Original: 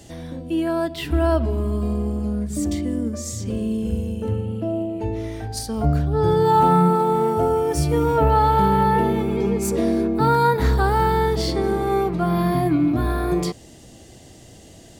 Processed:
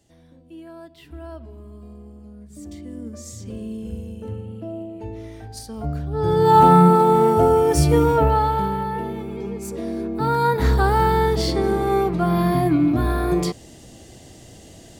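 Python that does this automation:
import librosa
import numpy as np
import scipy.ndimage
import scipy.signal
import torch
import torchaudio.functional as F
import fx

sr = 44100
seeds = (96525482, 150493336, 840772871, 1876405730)

y = fx.gain(x, sr, db=fx.line((2.35, -18.0), (3.18, -7.5), (6.0, -7.5), (6.57, 4.0), (7.95, 4.0), (8.87, -8.5), (9.81, -8.5), (10.71, 1.0)))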